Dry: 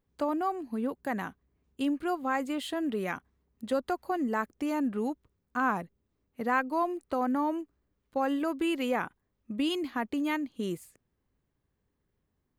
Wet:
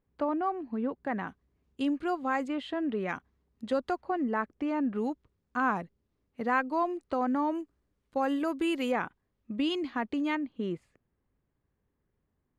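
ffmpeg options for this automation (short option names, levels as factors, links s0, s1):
-af "asetnsamples=n=441:p=0,asendcmd='1.28 lowpass f 6400;2.48 lowpass f 2900;3.09 lowpass f 6100;4.01 lowpass f 2800;4.95 lowpass f 5800;7.55 lowpass f 10000;8.92 lowpass f 5100;10.35 lowpass f 2500',lowpass=2600"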